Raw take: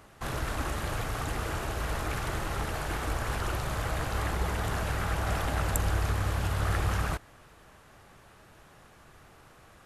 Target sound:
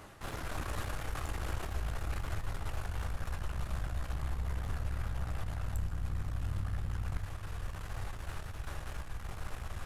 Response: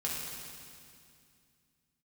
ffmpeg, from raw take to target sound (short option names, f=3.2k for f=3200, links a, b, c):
-filter_complex "[0:a]asubboost=boost=9:cutoff=71,dynaudnorm=f=240:g=5:m=14.5dB,alimiter=limit=-15dB:level=0:latency=1:release=58,areverse,acompressor=threshold=-37dB:ratio=4,areverse,aeval=exprs='clip(val(0),-1,0.00501)':c=same,flanger=delay=9.7:depth=7.1:regen=-52:speed=0.38:shape=triangular,asplit=2[a][b];[1:a]atrim=start_sample=2205,asetrate=29106,aresample=44100[c];[b][c]afir=irnorm=-1:irlink=0,volume=-17.5dB[d];[a][d]amix=inputs=2:normalize=0,volume=6dB"